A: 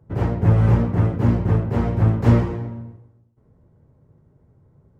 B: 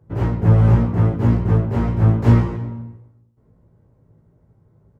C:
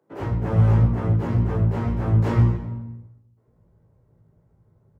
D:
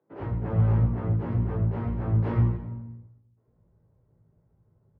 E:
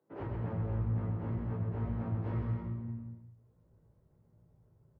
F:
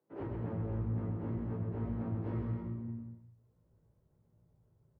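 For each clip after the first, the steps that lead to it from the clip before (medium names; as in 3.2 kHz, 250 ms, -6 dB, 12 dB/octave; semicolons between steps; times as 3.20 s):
doubling 18 ms -4.5 dB; trim -1 dB
bands offset in time highs, lows 100 ms, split 250 Hz; trim -3.5 dB
distance through air 310 m; trim -5 dB
compression 2.5:1, threshold -35 dBFS, peak gain reduction 11.5 dB; bouncing-ball echo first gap 130 ms, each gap 0.7×, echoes 5; trim -3 dB
dynamic bell 310 Hz, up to +7 dB, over -51 dBFS, Q 1; trim -4 dB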